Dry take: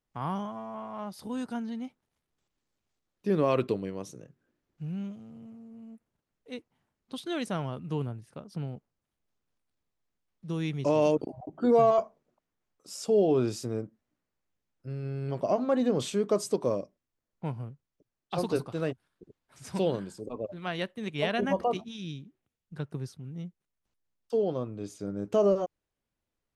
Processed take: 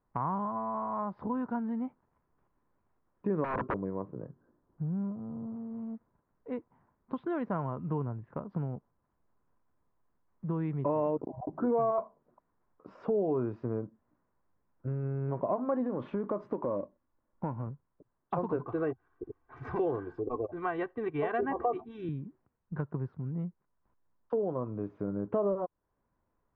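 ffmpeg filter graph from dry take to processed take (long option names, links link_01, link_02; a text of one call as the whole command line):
ffmpeg -i in.wav -filter_complex "[0:a]asettb=1/sr,asplit=3[link_01][link_02][link_03];[link_01]atrim=end=3.444[link_04];[link_02]atrim=start=3.44:end=5.56,asetpts=PTS-STARTPTS,afade=type=in:duration=0.004:curve=qsin,afade=type=out:start_time=2.116:duration=0.004:curve=qsin,lowpass=1300,aeval=exprs='(mod(14.1*val(0)+1,2)-1)/14.1':channel_layout=same[link_05];[link_03]atrim=start=5.556[link_06];[link_04][link_05]acrossfade=duration=0.004:curve1=hsin:curve2=qsin[link_07];[link_07][link_06]acrossfade=duration=0.004:curve1=qsin:curve2=hsin,asettb=1/sr,asplit=3[link_08][link_09][link_10];[link_08]atrim=end=15.864[link_11];[link_09]atrim=start=15.86:end=17.67,asetpts=PTS-STARTPTS,afade=type=in:duration=0.004:curve=qsin,afade=type=out:start_time=1.806:duration=0.004:curve=qsin,aecho=1:1:3.5:0.34,atrim=end_sample=79821,acompressor=threshold=-29dB:ratio=2.5:attack=3.2:release=140:knee=1:detection=peak,acrusher=bits=6:mode=log:mix=0:aa=0.000001[link_12];[link_10]atrim=start=17.666[link_13];[link_11][link_12]acrossfade=duration=0.004:curve1=hsin:curve2=qsin[link_14];[link_14][link_13]acrossfade=duration=0.004:curve1=qsin:curve2=hsin,asettb=1/sr,asplit=3[link_15][link_16][link_17];[link_15]atrim=end=18.654[link_18];[link_16]atrim=start=18.65:end=22.09,asetpts=PTS-STARTPTS,afade=type=in:duration=0.004:curve=qsin,afade=type=out:start_time=3.436:duration=0.004:curve=qsin,highshelf=frequency=5000:gain=9.5,bandreject=frequency=790:width=24,aecho=1:1:2.6:0.86,atrim=end_sample=151704[link_19];[link_17]atrim=start=22.086[link_20];[link_18][link_19]acrossfade=duration=0.004:curve1=hsin:curve2=qsin[link_21];[link_21][link_20]acrossfade=duration=0.004:curve1=qsin:curve2=hsin,lowpass=frequency=1600:width=0.5412,lowpass=frequency=1600:width=1.3066,equalizer=frequency=1000:width_type=o:width=0.22:gain=9,acompressor=threshold=-42dB:ratio=2.5,volume=8dB" out.wav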